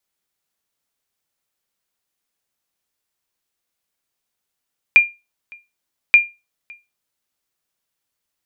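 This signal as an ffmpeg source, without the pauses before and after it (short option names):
-f lavfi -i "aevalsrc='0.841*(sin(2*PI*2400*mod(t,1.18))*exp(-6.91*mod(t,1.18)/0.24)+0.0335*sin(2*PI*2400*max(mod(t,1.18)-0.56,0))*exp(-6.91*max(mod(t,1.18)-0.56,0)/0.24))':d=2.36:s=44100"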